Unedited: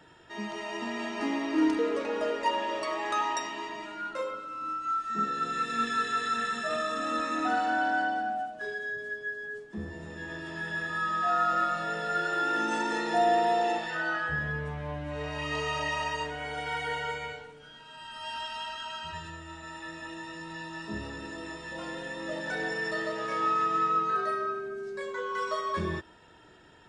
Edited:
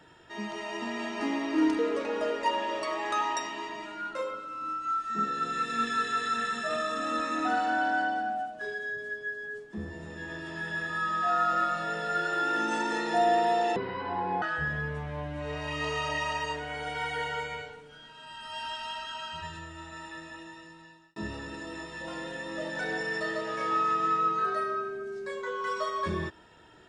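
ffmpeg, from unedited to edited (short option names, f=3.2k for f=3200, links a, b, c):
-filter_complex "[0:a]asplit=4[a][b][c][d];[a]atrim=end=13.764[e];[b]atrim=start=13.76:end=14.13,asetpts=PTS-STARTPTS,asetrate=24696,aresample=44100,atrim=end_sample=29137,asetpts=PTS-STARTPTS[f];[c]atrim=start=14.126:end=20.87,asetpts=PTS-STARTPTS,afade=t=out:st=5.544:d=1.2[g];[d]atrim=start=20.87,asetpts=PTS-STARTPTS,afade=t=in:d=0.004:c=hsin[h];[e][f]acrossfade=d=0.004:c1=hsin:c2=hsin[i];[g][h]concat=n=2:v=0:a=1[j];[i][j]acrossfade=d=0.004:c1=hsin:c2=hsin"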